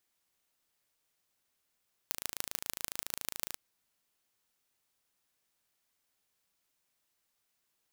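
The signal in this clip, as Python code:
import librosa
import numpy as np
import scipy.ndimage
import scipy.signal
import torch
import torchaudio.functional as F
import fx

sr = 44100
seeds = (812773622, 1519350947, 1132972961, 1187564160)

y = fx.impulse_train(sr, length_s=1.47, per_s=27.2, accent_every=4, level_db=-5.0)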